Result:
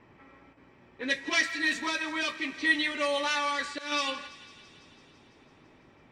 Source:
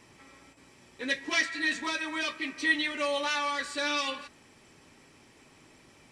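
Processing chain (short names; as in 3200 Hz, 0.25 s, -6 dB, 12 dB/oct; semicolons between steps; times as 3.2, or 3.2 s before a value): 1.4–2.68 crackle 410/s -42 dBFS; low-pass opened by the level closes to 1800 Hz, open at -25.5 dBFS; 3.48–3.92 auto swell 0.218 s; on a send: thinning echo 0.167 s, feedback 76%, high-pass 980 Hz, level -17 dB; on the sum: gain +1 dB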